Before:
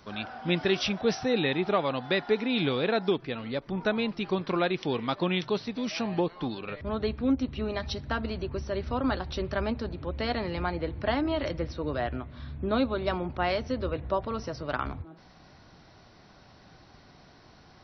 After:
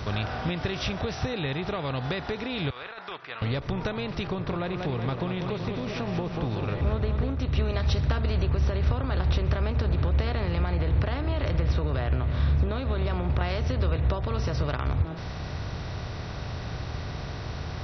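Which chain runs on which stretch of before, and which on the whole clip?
0:02.70–0:03.42: four-pole ladder band-pass 1,600 Hz, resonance 35% + compressor whose output falls as the input rises −49 dBFS
0:04.27–0:07.40: low-pass filter 1,100 Hz 6 dB per octave + feedback echo with a swinging delay time 188 ms, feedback 54%, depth 65 cents, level −10 dB
0:08.51–0:13.41: downward compressor, threshold −31 dBFS + high-frequency loss of the air 140 metres + single-tap delay 876 ms −23.5 dB
whole clip: compressor on every frequency bin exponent 0.6; downward compressor, threshold −27 dBFS; low shelf with overshoot 160 Hz +12.5 dB, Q 1.5

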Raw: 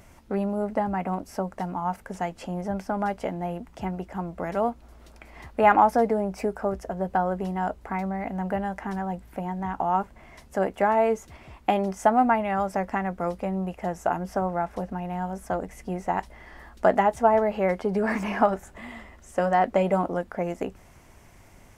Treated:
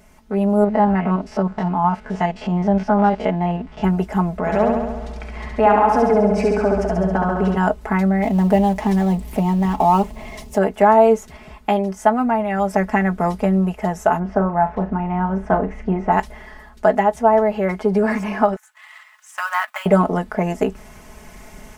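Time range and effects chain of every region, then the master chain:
0:00.64–0:03.84: spectrum averaged block by block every 50 ms + Chebyshev low-pass filter 3,700 Hz
0:04.37–0:07.57: high-frequency loss of the air 67 metres + downward compressor 2 to 1, threshold −30 dBFS + flutter between parallel walls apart 11.7 metres, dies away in 1.2 s
0:08.22–0:10.58: mu-law and A-law mismatch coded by mu + parametric band 1,500 Hz −12.5 dB 0.5 octaves
0:14.19–0:16.12: low-pass filter 2,100 Hz + flutter between parallel walls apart 6.2 metres, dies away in 0.22 s
0:18.56–0:19.86: mu-law and A-law mismatch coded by A + inverse Chebyshev high-pass filter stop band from 410 Hz, stop band 50 dB + dynamic equaliser 5,000 Hz, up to −4 dB, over −52 dBFS, Q 0.96
whole clip: comb filter 4.7 ms, depth 78%; automatic gain control gain up to 11.5 dB; level −1 dB

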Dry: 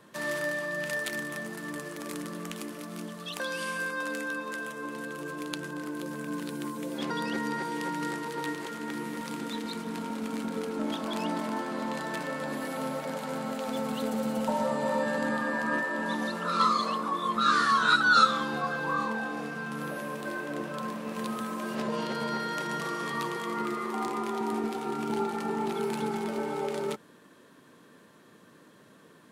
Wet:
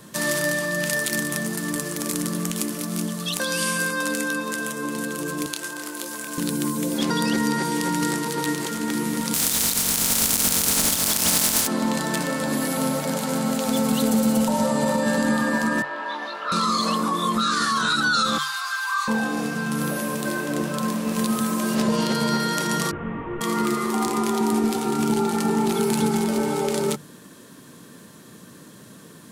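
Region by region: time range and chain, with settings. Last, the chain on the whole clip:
0:05.46–0:06.38: Bessel high-pass filter 640 Hz + double-tracking delay 26 ms −8 dB
0:09.33–0:11.66: compressing power law on the bin magnitudes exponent 0.31 + mains-hum notches 50/100/150/200/250/300/350/400/450 Hz
0:15.82–0:16.52: high-pass filter 810 Hz + high-frequency loss of the air 330 metres + double-tracking delay 20 ms −4 dB
0:18.38–0:19.08: Butterworth high-pass 1,100 Hz + comb filter 5.9 ms, depth 62%
0:22.91–0:23.41: linear delta modulator 16 kbit/s, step −43 dBFS + high-frequency loss of the air 360 metres + micro pitch shift up and down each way 23 cents
whole clip: brickwall limiter −22 dBFS; bass and treble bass +10 dB, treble +12 dB; mains-hum notches 50/100/150 Hz; level +6.5 dB

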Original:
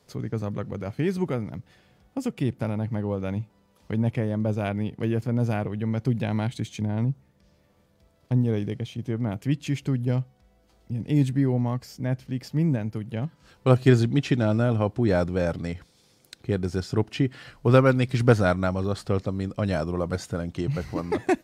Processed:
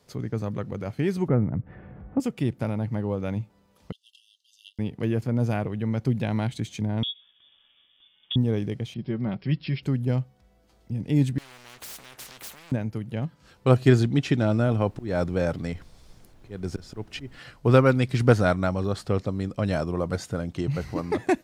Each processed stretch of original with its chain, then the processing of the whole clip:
0:01.28–0:02.20: low-pass filter 1,900 Hz 24 dB per octave + upward compression, threshold −40 dBFS + low-shelf EQ 380 Hz +9.5 dB
0:03.92–0:04.79: linear-phase brick-wall high-pass 2,700 Hz + high-shelf EQ 6,600 Hz −10 dB
0:07.03–0:08.36: one scale factor per block 7 bits + downward compressor 5 to 1, threshold −29 dBFS + voice inversion scrambler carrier 3,500 Hz
0:08.94–0:09.83: linear-phase brick-wall low-pass 5,500 Hz + parametric band 800 Hz −4 dB 2 octaves + comb filter 5.3 ms, depth 57%
0:11.38–0:12.72: downward compressor 10 to 1, threshold −36 dBFS + leveller curve on the samples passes 3 + every bin compressed towards the loudest bin 10 to 1
0:14.66–0:17.38: high-pass filter 45 Hz + volume swells 247 ms + background noise brown −49 dBFS
whole clip: no processing

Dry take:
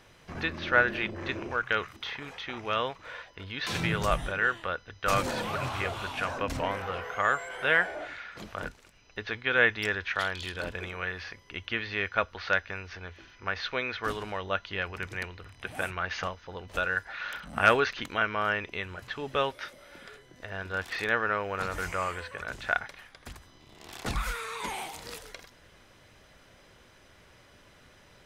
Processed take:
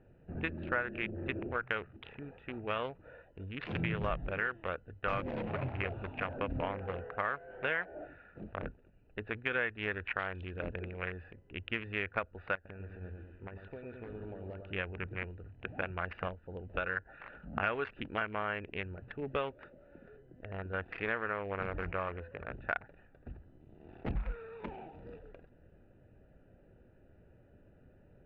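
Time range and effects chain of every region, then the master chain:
0:12.55–0:14.73: downward compressor 4 to 1, threshold −37 dBFS + echo with a time of its own for lows and highs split 1,300 Hz, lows 103 ms, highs 143 ms, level −5 dB
whole clip: adaptive Wiener filter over 41 samples; Chebyshev low-pass filter 2,700 Hz, order 3; downward compressor 5 to 1, threshold −30 dBFS

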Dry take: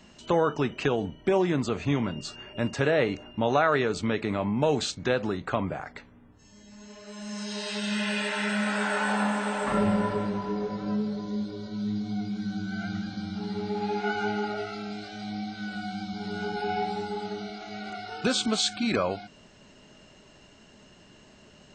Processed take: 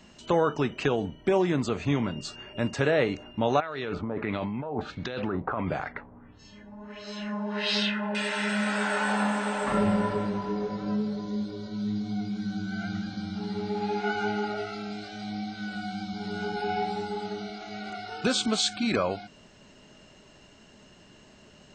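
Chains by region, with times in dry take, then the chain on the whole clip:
0:03.60–0:08.15: compressor whose output falls as the input rises −31 dBFS + auto-filter low-pass sine 1.5 Hz 830–4,800 Hz
whole clip: no processing

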